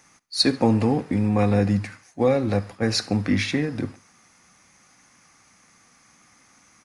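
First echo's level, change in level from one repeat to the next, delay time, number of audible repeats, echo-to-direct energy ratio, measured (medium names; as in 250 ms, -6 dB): -23.5 dB, -5.5 dB, 69 ms, 2, -22.5 dB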